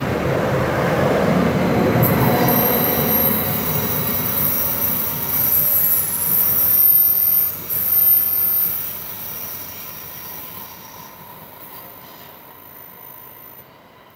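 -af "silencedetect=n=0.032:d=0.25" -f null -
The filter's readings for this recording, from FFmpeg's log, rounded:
silence_start: 13.60
silence_end: 14.15 | silence_duration: 0.55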